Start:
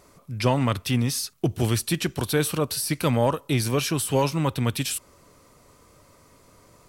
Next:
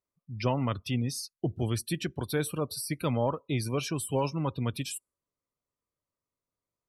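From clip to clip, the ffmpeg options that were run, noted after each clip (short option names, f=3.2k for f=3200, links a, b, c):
-af "afftdn=nr=32:nf=-33,volume=-6.5dB"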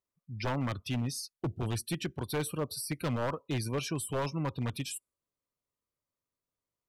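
-af "aeval=exprs='0.0708*(abs(mod(val(0)/0.0708+3,4)-2)-1)':c=same,volume=-2dB"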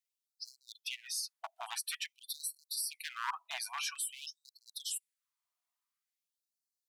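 -af "afftfilt=real='re*gte(b*sr/1024,610*pow(4100/610,0.5+0.5*sin(2*PI*0.49*pts/sr)))':imag='im*gte(b*sr/1024,610*pow(4100/610,0.5+0.5*sin(2*PI*0.49*pts/sr)))':win_size=1024:overlap=0.75,volume=2dB"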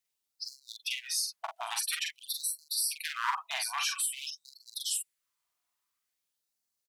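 -filter_complex "[0:a]asplit=2[a][b];[b]adelay=44,volume=-4dB[c];[a][c]amix=inputs=2:normalize=0,volume=5dB"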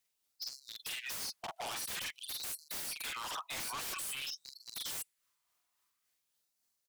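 -af "asoftclip=type=hard:threshold=-31dB,tremolo=f=3.6:d=0.36,aeval=exprs='0.0112*(abs(mod(val(0)/0.0112+3,4)-2)-1)':c=same,volume=4.5dB"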